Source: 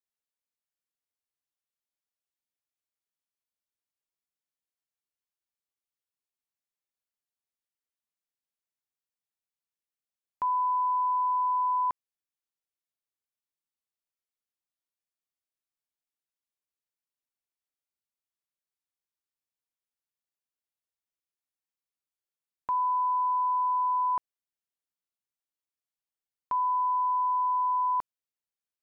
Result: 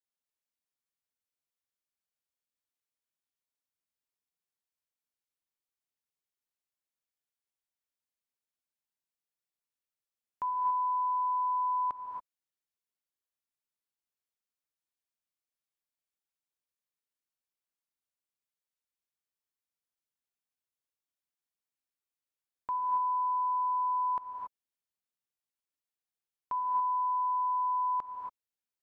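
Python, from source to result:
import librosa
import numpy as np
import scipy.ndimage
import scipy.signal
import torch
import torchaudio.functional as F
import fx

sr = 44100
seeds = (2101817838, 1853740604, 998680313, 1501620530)

y = fx.rev_gated(x, sr, seeds[0], gate_ms=300, shape='rising', drr_db=2.0)
y = y * 10.0 ** (-4.5 / 20.0)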